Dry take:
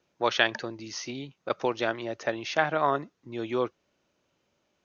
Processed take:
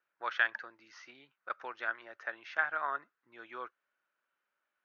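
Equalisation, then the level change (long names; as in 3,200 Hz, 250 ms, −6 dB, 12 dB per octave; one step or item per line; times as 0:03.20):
resonant band-pass 1,500 Hz, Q 3.5
0.0 dB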